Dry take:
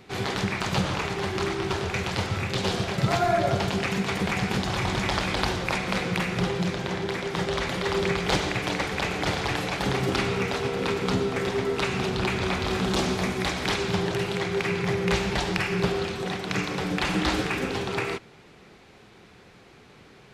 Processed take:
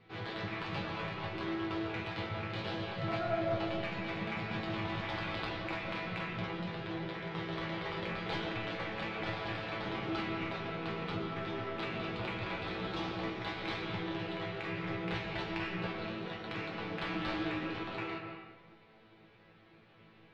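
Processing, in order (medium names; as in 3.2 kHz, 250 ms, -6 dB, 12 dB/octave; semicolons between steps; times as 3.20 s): low-pass 4 kHz 24 dB/octave; in parallel at -9 dB: saturation -23.5 dBFS, distortion -12 dB; on the sum: chord resonator A2 fifth, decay 0.26 s; reverberation RT60 1.3 s, pre-delay 105 ms, DRR 4 dB; trim -1.5 dB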